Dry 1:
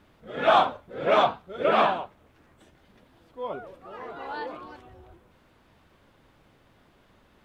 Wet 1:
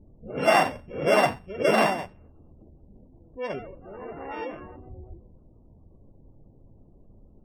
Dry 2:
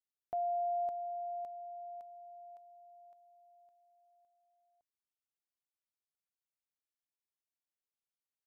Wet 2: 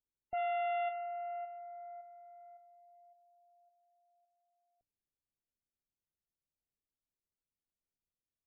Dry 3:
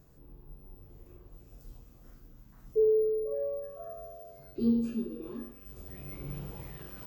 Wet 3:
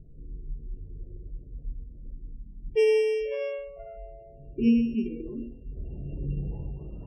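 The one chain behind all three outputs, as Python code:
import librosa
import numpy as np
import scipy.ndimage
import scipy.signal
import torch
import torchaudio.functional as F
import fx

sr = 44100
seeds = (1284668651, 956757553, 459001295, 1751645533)

y = np.r_[np.sort(x[:len(x) // 16 * 16].reshape(-1, 16), axis=1).ravel(), x[len(x) // 16 * 16:]]
y = fx.env_lowpass(y, sr, base_hz=580.0, full_db=-25.0)
y = fx.hum_notches(y, sr, base_hz=60, count=5)
y = fx.spec_gate(y, sr, threshold_db=-25, keep='strong')
y = fx.tilt_eq(y, sr, slope=-3.0)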